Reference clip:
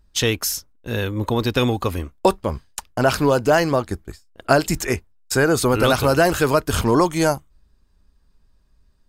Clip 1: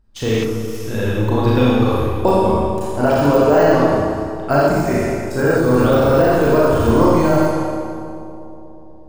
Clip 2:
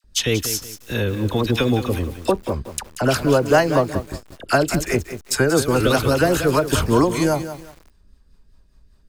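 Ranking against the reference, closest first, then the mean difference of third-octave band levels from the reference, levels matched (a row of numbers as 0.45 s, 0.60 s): 2, 1; 6.5 dB, 9.5 dB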